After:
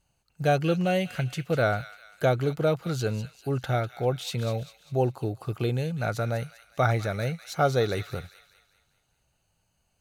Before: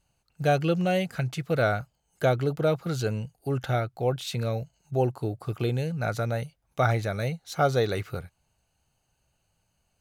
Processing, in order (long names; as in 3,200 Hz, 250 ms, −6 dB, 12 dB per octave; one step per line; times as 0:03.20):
delay with a high-pass on its return 198 ms, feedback 46%, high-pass 1,900 Hz, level −10 dB